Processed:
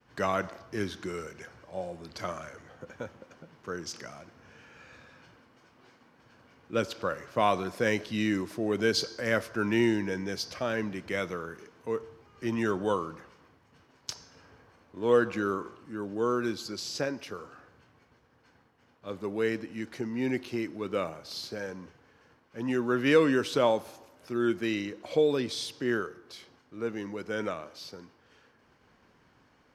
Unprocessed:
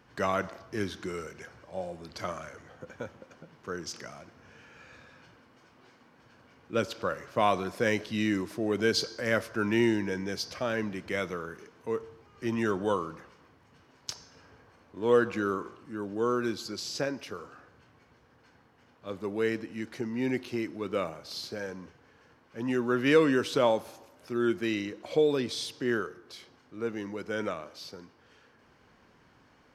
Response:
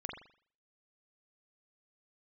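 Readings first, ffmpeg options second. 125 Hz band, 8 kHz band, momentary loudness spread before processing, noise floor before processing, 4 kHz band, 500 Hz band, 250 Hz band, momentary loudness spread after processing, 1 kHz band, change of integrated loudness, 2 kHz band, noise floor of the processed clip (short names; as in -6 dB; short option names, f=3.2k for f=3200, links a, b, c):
0.0 dB, 0.0 dB, 18 LU, -62 dBFS, 0.0 dB, 0.0 dB, 0.0 dB, 18 LU, 0.0 dB, 0.0 dB, 0.0 dB, -64 dBFS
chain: -af "agate=range=-33dB:threshold=-58dB:ratio=3:detection=peak"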